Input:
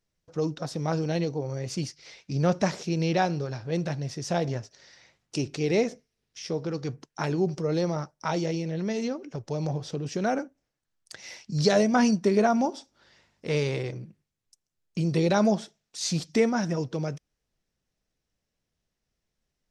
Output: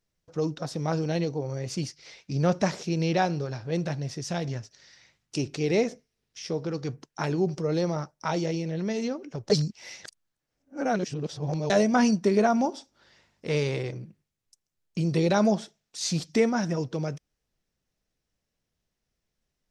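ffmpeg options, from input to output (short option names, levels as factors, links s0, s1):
-filter_complex "[0:a]asettb=1/sr,asplit=3[s0][s1][s2];[s0]atrim=end=4.214[s3];[s1]atrim=start=4.21:end=5.36,asetpts=PTS-STARTPTS,afade=t=in:d=0.004:c=qsin,afade=t=out:st=1.146:d=0.004:c=qsin,equalizer=f=570:t=o:w=2:g=-6.5[s4];[s2]atrim=start=5.356[s5];[s3][s4]acrossfade=d=0.004:c1=hsin:c2=qsin[s6];[s6][s5]acrossfade=d=0.004:c1=qsin:c2=hsin,asplit=3[s7][s8][s9];[s7]atrim=end=9.502[s10];[s8]atrim=start=9.498:end=11.702,asetpts=PTS-STARTPTS,areverse[s11];[s9]atrim=start=11.698[s12];[s10][s11]acrossfade=d=0.004:c1=hsin:c2=hsin[s13];[s13][s12]acrossfade=d=0.004:c1=hsin:c2=hsin"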